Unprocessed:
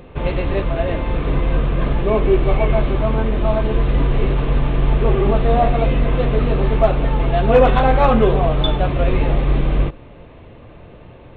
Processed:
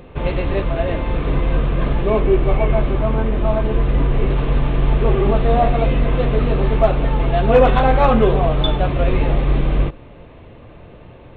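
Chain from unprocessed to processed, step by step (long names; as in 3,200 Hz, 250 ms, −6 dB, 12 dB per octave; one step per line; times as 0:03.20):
0:02.22–0:04.30: high-frequency loss of the air 140 metres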